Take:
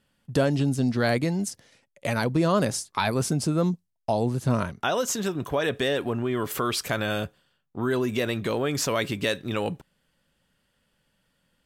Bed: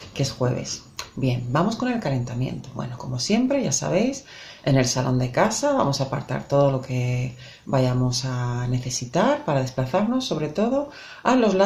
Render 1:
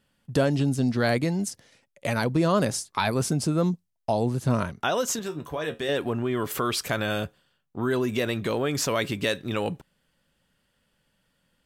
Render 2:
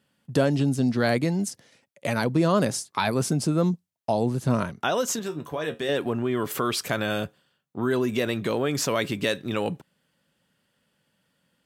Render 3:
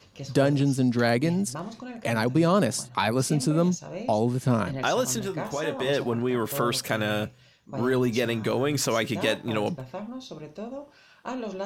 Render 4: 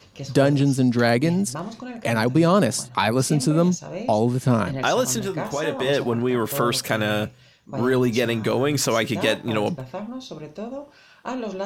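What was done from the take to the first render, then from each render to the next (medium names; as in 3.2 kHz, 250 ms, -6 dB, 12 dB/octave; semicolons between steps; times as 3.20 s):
5.19–5.89 s: feedback comb 77 Hz, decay 0.18 s, mix 80%
high-pass 120 Hz 12 dB/octave; bass shelf 360 Hz +2.5 dB
add bed -15 dB
trim +4 dB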